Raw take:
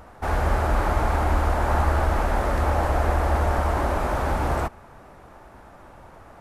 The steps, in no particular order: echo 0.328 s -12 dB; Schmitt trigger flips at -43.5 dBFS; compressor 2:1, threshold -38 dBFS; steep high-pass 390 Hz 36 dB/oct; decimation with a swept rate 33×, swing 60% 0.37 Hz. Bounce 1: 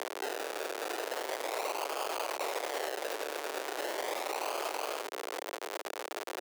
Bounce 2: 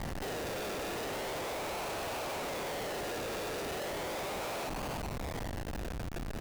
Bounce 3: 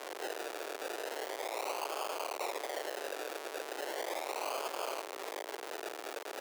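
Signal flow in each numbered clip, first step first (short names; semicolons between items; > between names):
decimation with a swept rate > echo > Schmitt trigger > steep high-pass > compressor; decimation with a swept rate > steep high-pass > compressor > echo > Schmitt trigger; echo > compressor > Schmitt trigger > decimation with a swept rate > steep high-pass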